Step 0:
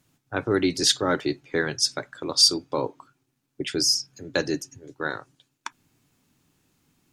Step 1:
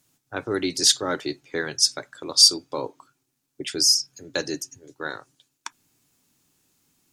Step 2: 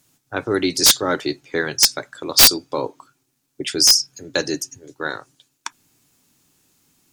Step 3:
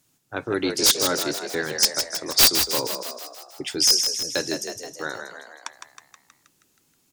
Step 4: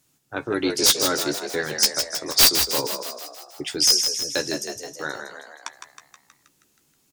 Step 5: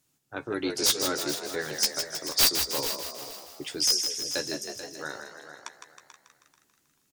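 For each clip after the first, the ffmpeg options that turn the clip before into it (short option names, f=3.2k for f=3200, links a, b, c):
-af "bass=f=250:g=-4,treble=f=4k:g=8,volume=-2.5dB"
-af "aeval=exprs='(mod(2.51*val(0)+1,2)-1)/2.51':c=same,volume=5.5dB"
-filter_complex "[0:a]asplit=9[a][b][c][d][e][f][g][h][i];[b]adelay=159,afreqshift=57,volume=-7dB[j];[c]adelay=318,afreqshift=114,volume=-11.4dB[k];[d]adelay=477,afreqshift=171,volume=-15.9dB[l];[e]adelay=636,afreqshift=228,volume=-20.3dB[m];[f]adelay=795,afreqshift=285,volume=-24.7dB[n];[g]adelay=954,afreqshift=342,volume=-29.2dB[o];[h]adelay=1113,afreqshift=399,volume=-33.6dB[p];[i]adelay=1272,afreqshift=456,volume=-38.1dB[q];[a][j][k][l][m][n][o][p][q]amix=inputs=9:normalize=0,volume=-5dB"
-filter_complex "[0:a]asplit=2[a][b];[b]adelay=14,volume=-9dB[c];[a][c]amix=inputs=2:normalize=0"
-af "aecho=1:1:437|874|1311:0.251|0.0578|0.0133,volume=-6.5dB"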